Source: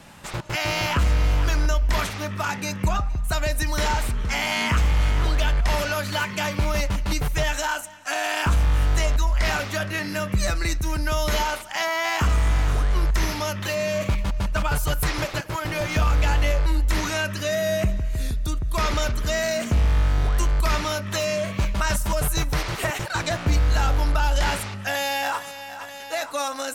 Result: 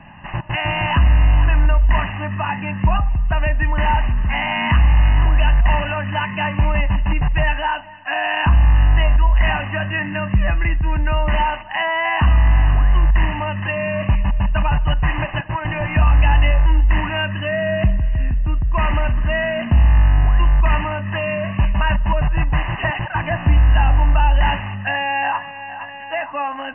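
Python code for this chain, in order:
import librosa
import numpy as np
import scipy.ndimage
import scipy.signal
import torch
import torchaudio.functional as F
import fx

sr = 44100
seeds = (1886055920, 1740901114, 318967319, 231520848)

y = fx.brickwall_lowpass(x, sr, high_hz=3000.0)
y = y + 0.77 * np.pad(y, (int(1.1 * sr / 1000.0), 0))[:len(y)]
y = y * librosa.db_to_amplitude(2.5)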